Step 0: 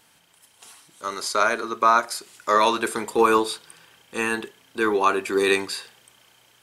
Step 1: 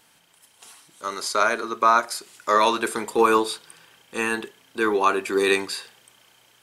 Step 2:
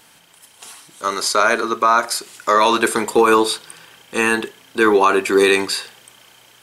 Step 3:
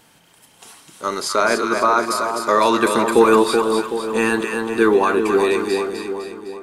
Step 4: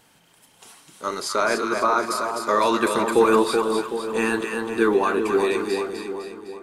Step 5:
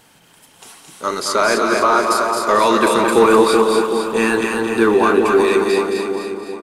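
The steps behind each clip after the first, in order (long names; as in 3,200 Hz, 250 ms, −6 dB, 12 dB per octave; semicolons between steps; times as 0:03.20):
parametric band 72 Hz −4.5 dB 1.2 octaves
brickwall limiter −12.5 dBFS, peak gain reduction 7.5 dB; level +8.5 dB
fade-out on the ending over 2.06 s; tilt shelving filter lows +4 dB, about 710 Hz; echo with a time of its own for lows and highs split 1,100 Hz, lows 378 ms, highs 254 ms, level −5 dB; level −1 dB
flanger 1.7 Hz, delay 1.2 ms, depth 6.3 ms, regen −65%
in parallel at −8 dB: hard clipping −19.5 dBFS, distortion −9 dB; on the sum: repeating echo 220 ms, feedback 32%, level −6 dB; level +3.5 dB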